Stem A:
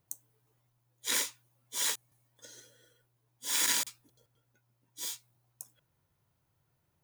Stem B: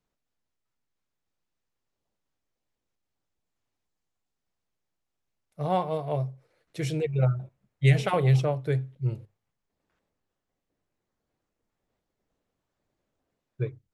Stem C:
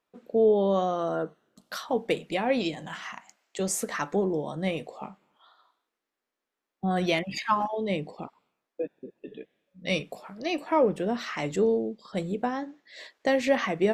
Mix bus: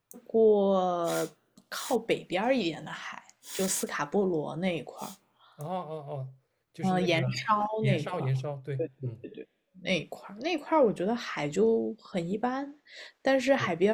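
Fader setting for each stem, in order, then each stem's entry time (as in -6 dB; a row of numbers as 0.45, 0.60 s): -9.5, -8.5, -1.0 dB; 0.00, 0.00, 0.00 s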